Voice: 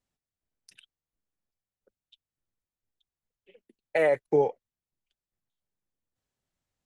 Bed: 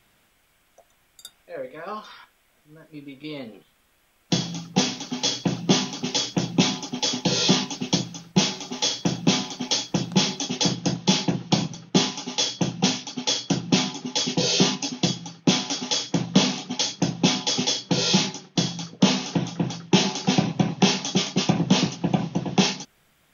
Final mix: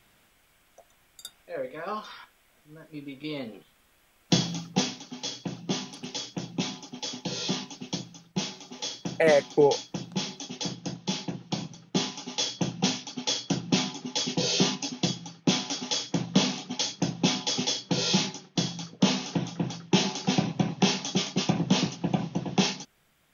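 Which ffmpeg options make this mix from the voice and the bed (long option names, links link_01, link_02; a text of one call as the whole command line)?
ffmpeg -i stem1.wav -i stem2.wav -filter_complex "[0:a]adelay=5250,volume=2.5dB[link_01];[1:a]volume=6dB,afade=type=out:start_time=4.43:duration=0.61:silence=0.298538,afade=type=in:start_time=11.54:duration=1.01:silence=0.501187[link_02];[link_01][link_02]amix=inputs=2:normalize=0" out.wav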